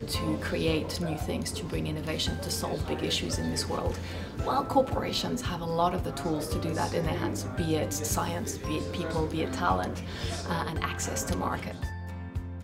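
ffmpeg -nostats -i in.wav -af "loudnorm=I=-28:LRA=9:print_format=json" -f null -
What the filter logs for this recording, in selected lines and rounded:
"input_i" : "-31.0",
"input_tp" : "-11.6",
"input_lra" : "3.4",
"input_thresh" : "-41.0",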